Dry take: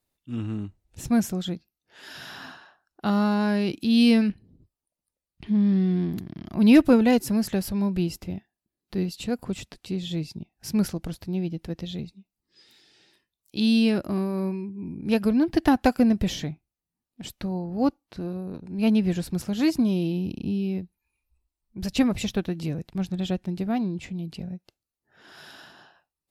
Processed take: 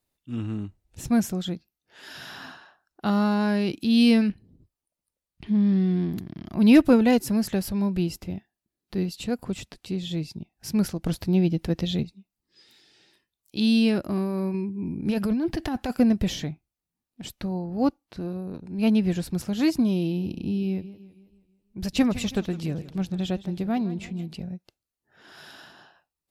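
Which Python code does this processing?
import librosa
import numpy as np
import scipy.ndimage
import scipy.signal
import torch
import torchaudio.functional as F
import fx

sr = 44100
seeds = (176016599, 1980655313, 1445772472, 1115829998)

y = fx.over_compress(x, sr, threshold_db=-24.0, ratio=-1.0, at=(14.54, 15.96))
y = fx.echo_warbled(y, sr, ms=162, feedback_pct=49, rate_hz=2.8, cents=116, wet_db=-16.5, at=(20.05, 24.35))
y = fx.edit(y, sr, fx.clip_gain(start_s=11.06, length_s=0.97, db=7.0), tone=tone)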